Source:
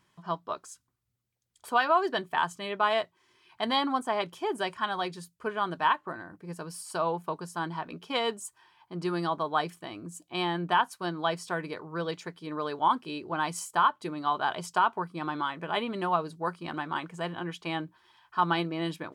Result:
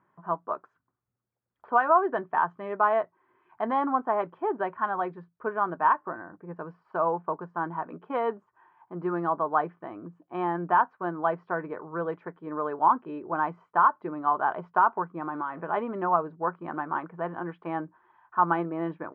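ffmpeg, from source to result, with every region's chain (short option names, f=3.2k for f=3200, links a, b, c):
-filter_complex "[0:a]asettb=1/sr,asplit=3[a][b][c];[a]atrim=end=15.194[d];[b]atrim=start=15.19:end=15.61,asetpts=PTS-STARTPTS,afade=t=in:d=0.004:c=qsin,afade=t=out:st=0.416:d=0.004:c=qsin,aeval=exprs='val(0)+0.5*0.00562*sgn(val(0))':c=same,acompressor=threshold=-33dB:ratio=2:attack=3.2:release=140:knee=1:detection=peak[e];[c]atrim=start=15.606[f];[d][e]acrossfade=d=0.004:c1=hsin:c2=qsin[g];[g][f]acrossfade=d=0.004:c1=qsin:c2=hsin,highpass=f=290:p=1,deesser=0.8,lowpass=f=1.5k:w=0.5412,lowpass=f=1.5k:w=1.3066,volume=4dB"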